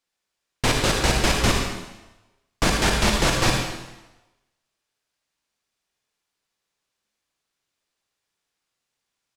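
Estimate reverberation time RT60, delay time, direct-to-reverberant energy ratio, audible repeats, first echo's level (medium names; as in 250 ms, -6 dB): 1.1 s, 76 ms, 0.5 dB, 1, -9.5 dB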